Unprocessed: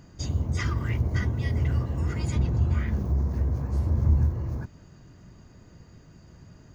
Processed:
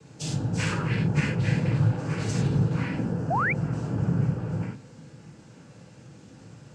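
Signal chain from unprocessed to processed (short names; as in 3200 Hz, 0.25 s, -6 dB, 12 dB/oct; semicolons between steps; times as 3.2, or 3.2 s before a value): noise vocoder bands 8; non-linear reverb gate 0.12 s flat, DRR -3.5 dB; painted sound rise, 3.3–3.53, 620–2500 Hz -25 dBFS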